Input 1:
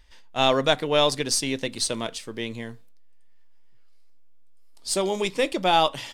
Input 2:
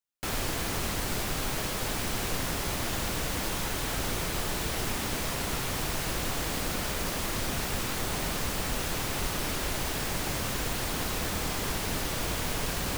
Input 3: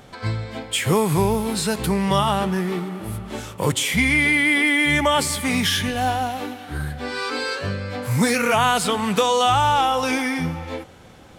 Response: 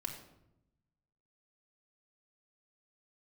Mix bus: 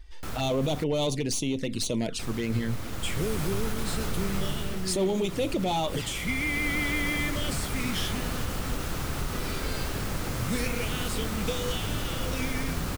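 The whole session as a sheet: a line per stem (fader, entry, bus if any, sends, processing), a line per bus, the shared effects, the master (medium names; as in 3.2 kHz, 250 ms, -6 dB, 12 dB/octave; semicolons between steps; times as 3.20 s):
+1.5 dB, 0.00 s, bus A, no send, gain riding within 3 dB 2 s; hard clipper -20.5 dBFS, distortion -8 dB; touch-sensitive flanger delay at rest 2.8 ms, full sweep at -23 dBFS
-5.0 dB, 0.00 s, muted 0.84–2.19 s, bus A, no send, peaking EQ 1.3 kHz +6 dB 0.39 oct; auto duck -7 dB, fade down 0.50 s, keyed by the first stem
-11.0 dB, 2.30 s, no bus, no send, Chebyshev band-stop 450–2000 Hz
bus A: 0.0 dB, bass shelf 360 Hz +8.5 dB; peak limiter -20 dBFS, peak gain reduction 8 dB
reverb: none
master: none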